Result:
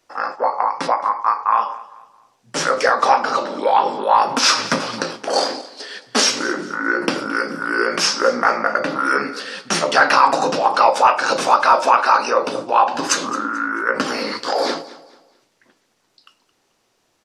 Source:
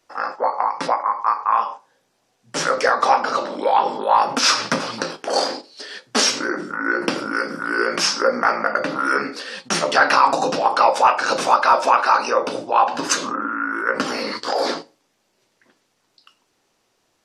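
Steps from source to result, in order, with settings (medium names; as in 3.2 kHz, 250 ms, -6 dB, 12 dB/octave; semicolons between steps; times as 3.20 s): feedback delay 219 ms, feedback 33%, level -18 dB; trim +1.5 dB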